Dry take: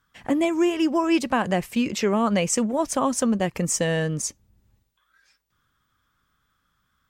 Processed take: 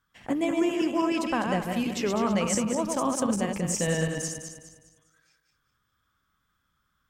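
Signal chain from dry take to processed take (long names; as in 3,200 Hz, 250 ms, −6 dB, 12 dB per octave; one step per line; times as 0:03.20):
feedback delay that plays each chunk backwards 102 ms, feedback 60%, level −4 dB
amplitude modulation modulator 130 Hz, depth 10%
level −5 dB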